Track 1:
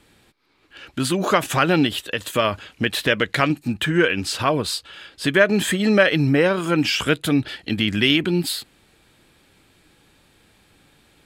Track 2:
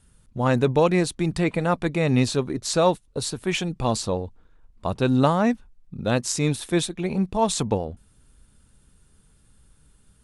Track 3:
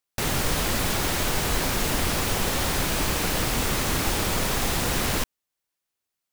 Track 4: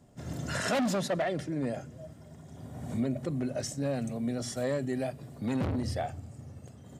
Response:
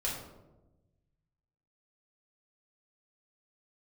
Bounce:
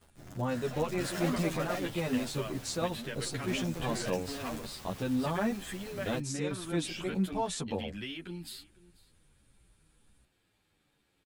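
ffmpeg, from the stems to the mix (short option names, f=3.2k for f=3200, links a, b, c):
-filter_complex "[0:a]acompressor=threshold=-20dB:ratio=3,volume=-15dB,asplit=2[a][b];[b]volume=-22.5dB[c];[1:a]alimiter=limit=-14dB:level=0:latency=1:release=173,volume=-6dB[d];[2:a]alimiter=limit=-18.5dB:level=0:latency=1,adelay=950,volume=-17dB[e];[3:a]bass=f=250:g=0,treble=f=4k:g=-3,acrusher=bits=6:dc=4:mix=0:aa=0.000001,volume=-1dB,asplit=3[f][g][h];[f]atrim=end=4.17,asetpts=PTS-STARTPTS,afade=t=out:st=4.166:d=0.004:c=hsin[i];[g]atrim=start=4.17:end=6.49,asetpts=PTS-STARTPTS,volume=0[j];[h]atrim=start=6.49,asetpts=PTS-STARTPTS,afade=t=in:d=0.004:c=hsin[k];[i][j][k]concat=n=3:v=0:a=1,asplit=2[l][m];[m]volume=-4dB[n];[e][l]amix=inputs=2:normalize=0,asoftclip=type=tanh:threshold=-31dB,acompressor=threshold=-40dB:ratio=5,volume=0dB[o];[c][n]amix=inputs=2:normalize=0,aecho=0:1:493:1[p];[a][d][o][p]amix=inputs=4:normalize=0,asplit=2[q][r];[r]adelay=10.1,afreqshift=-1.3[s];[q][s]amix=inputs=2:normalize=1"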